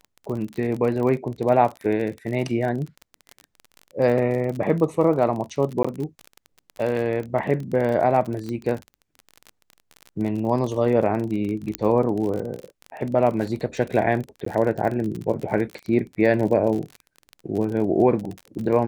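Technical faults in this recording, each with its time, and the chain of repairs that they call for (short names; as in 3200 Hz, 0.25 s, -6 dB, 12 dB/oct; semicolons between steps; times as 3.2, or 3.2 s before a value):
crackle 36/s -28 dBFS
5.83–5.84 gap 15 ms
8.49 pop -20 dBFS
11.75 pop -8 dBFS
14.45–14.46 gap 14 ms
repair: de-click; interpolate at 5.83, 15 ms; interpolate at 14.45, 14 ms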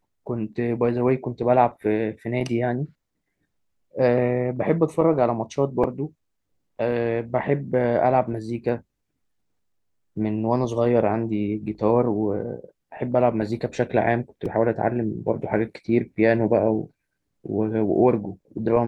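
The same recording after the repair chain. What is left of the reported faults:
8.49 pop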